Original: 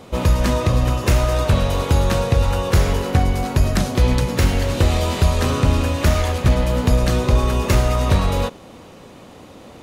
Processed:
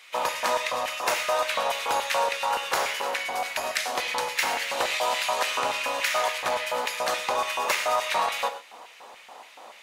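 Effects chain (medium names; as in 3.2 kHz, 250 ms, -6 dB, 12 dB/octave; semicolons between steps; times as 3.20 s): LFO high-pass square 3.5 Hz 810–2100 Hz; gated-style reverb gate 150 ms flat, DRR 9 dB; trim -3 dB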